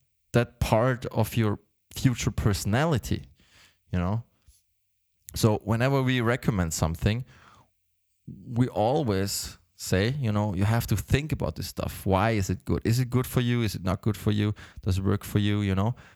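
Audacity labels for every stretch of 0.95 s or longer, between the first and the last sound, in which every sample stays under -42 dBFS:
4.220000	5.290000	silence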